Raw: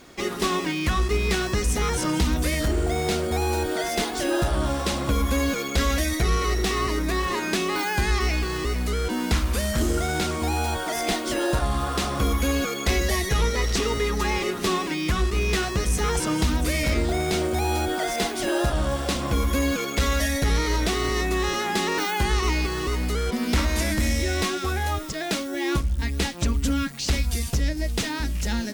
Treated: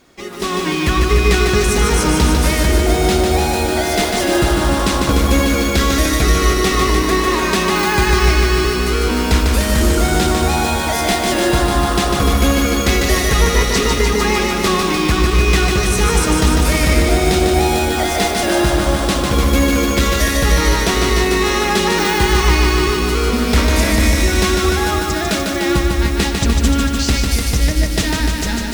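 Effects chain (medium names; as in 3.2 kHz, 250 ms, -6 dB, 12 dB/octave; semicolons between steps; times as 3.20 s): level rider gain up to 11.5 dB; bit-crushed delay 149 ms, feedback 80%, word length 6-bit, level -4 dB; trim -3.5 dB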